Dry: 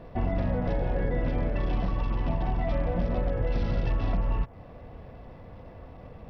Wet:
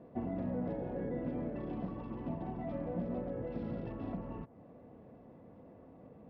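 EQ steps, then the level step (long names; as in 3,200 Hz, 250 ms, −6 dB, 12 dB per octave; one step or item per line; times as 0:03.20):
resonant band-pass 250 Hz, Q 1.3
high-frequency loss of the air 62 metres
spectral tilt +2.5 dB per octave
+2.0 dB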